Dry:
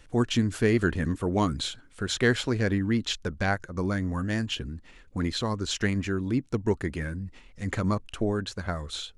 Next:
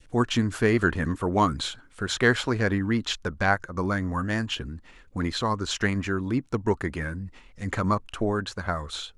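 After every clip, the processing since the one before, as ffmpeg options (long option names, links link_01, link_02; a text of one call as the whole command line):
ffmpeg -i in.wav -af "adynamicequalizer=threshold=0.00631:dfrequency=1100:dqfactor=1:tfrequency=1100:tqfactor=1:attack=5:release=100:ratio=0.375:range=4:mode=boostabove:tftype=bell" out.wav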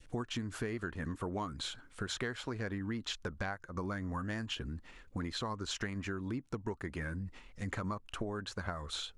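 ffmpeg -i in.wav -af "acompressor=threshold=-31dB:ratio=10,volume=-3.5dB" out.wav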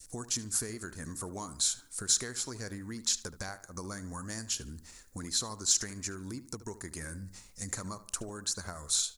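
ffmpeg -i in.wav -filter_complex "[0:a]asplit=2[link_01][link_02];[link_02]adelay=74,lowpass=frequency=2900:poles=1,volume=-14dB,asplit=2[link_03][link_04];[link_04]adelay=74,lowpass=frequency=2900:poles=1,volume=0.42,asplit=2[link_05][link_06];[link_06]adelay=74,lowpass=frequency=2900:poles=1,volume=0.42,asplit=2[link_07][link_08];[link_08]adelay=74,lowpass=frequency=2900:poles=1,volume=0.42[link_09];[link_01][link_03][link_05][link_07][link_09]amix=inputs=5:normalize=0,aexciter=amount=7.5:drive=9.1:freq=4600,volume=-3.5dB" out.wav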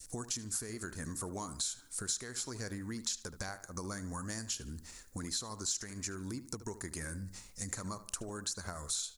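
ffmpeg -i in.wav -af "acompressor=threshold=-37dB:ratio=3,volume=1dB" out.wav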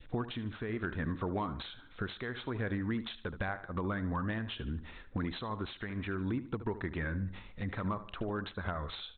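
ffmpeg -i in.wav -af "volume=32dB,asoftclip=hard,volume=-32dB,aresample=8000,aresample=44100,volume=7dB" out.wav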